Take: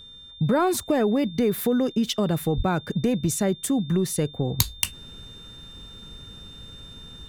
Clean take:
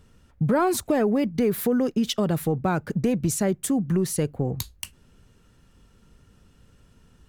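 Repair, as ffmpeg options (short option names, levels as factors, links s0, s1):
-filter_complex "[0:a]bandreject=f=3600:w=30,asplit=3[s0][s1][s2];[s0]afade=t=out:st=2.56:d=0.02[s3];[s1]highpass=f=140:w=0.5412,highpass=f=140:w=1.3066,afade=t=in:st=2.56:d=0.02,afade=t=out:st=2.68:d=0.02[s4];[s2]afade=t=in:st=2.68:d=0.02[s5];[s3][s4][s5]amix=inputs=3:normalize=0,asetnsamples=n=441:p=0,asendcmd='4.59 volume volume -10.5dB',volume=1"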